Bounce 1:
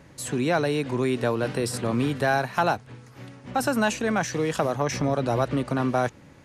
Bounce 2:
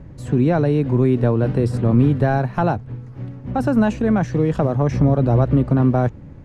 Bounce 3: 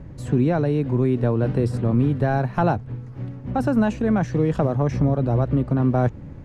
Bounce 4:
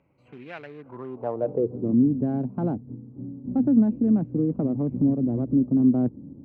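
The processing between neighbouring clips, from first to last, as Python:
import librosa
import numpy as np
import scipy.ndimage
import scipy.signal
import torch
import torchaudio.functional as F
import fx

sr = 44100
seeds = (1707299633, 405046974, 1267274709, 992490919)

y1 = fx.tilt_eq(x, sr, slope=-4.5)
y2 = fx.rider(y1, sr, range_db=10, speed_s=0.5)
y2 = y2 * librosa.db_to_amplitude(-3.0)
y3 = fx.wiener(y2, sr, points=25)
y3 = fx.filter_sweep_bandpass(y3, sr, from_hz=2300.0, to_hz=260.0, start_s=0.61, end_s=1.96, q=3.1)
y3 = y3 * librosa.db_to_amplitude(4.5)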